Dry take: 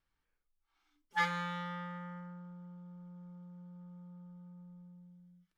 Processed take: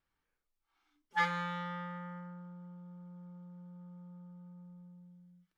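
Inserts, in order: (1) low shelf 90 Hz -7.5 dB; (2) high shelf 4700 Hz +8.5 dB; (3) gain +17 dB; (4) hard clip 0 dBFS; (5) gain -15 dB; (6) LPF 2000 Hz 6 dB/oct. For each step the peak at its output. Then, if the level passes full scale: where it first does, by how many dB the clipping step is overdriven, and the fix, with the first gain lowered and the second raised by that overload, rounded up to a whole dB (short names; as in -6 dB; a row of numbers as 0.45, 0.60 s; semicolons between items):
-20.5, -19.5, -2.5, -2.5, -17.5, -19.5 dBFS; no overload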